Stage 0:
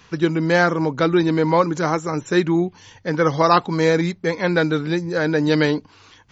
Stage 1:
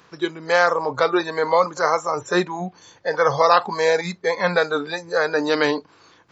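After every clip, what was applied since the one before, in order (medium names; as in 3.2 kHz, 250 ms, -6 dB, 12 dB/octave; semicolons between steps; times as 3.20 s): spectral levelling over time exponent 0.6; spectral noise reduction 18 dB; trim -1.5 dB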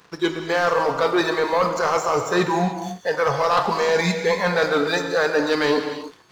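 reverse; compression 6:1, threshold -23 dBFS, peak gain reduction 12.5 dB; reverse; waveshaping leveller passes 2; gated-style reverb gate 330 ms flat, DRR 5.5 dB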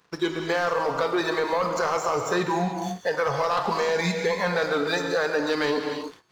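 gate -45 dBFS, range -11 dB; compression, threshold -21 dBFS, peak gain reduction 7 dB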